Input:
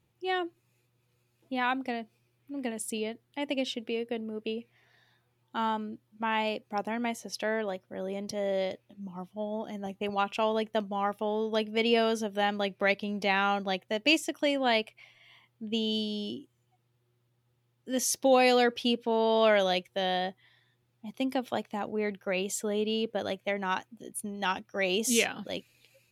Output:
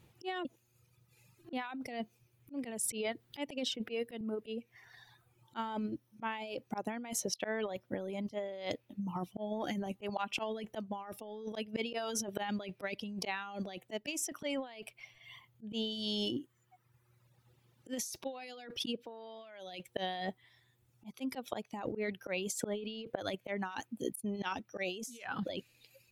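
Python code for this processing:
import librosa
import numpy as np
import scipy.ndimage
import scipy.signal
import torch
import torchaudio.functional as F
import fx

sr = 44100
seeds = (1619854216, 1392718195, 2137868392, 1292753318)

y = fx.band_squash(x, sr, depth_pct=70, at=(2.84, 4.21))
y = fx.edit(y, sr, fx.reverse_span(start_s=0.45, length_s=1.08), tone=tone)
y = fx.dereverb_blind(y, sr, rt60_s=1.2)
y = fx.auto_swell(y, sr, attack_ms=310.0)
y = fx.over_compress(y, sr, threshold_db=-43.0, ratio=-1.0)
y = y * librosa.db_to_amplitude(3.0)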